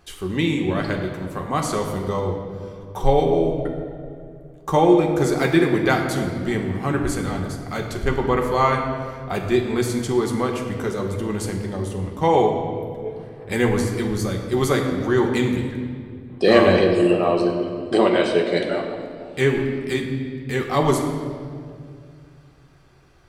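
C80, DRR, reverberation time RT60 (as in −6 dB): 6.5 dB, 1.0 dB, 2.2 s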